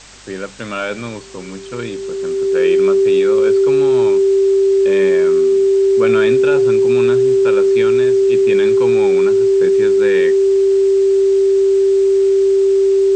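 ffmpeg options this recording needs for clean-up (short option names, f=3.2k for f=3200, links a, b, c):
-af "bandreject=f=50.1:t=h:w=4,bandreject=f=100.2:t=h:w=4,bandreject=f=150.3:t=h:w=4,bandreject=f=200.4:t=h:w=4,bandreject=f=390:w=30,afwtdn=0.014"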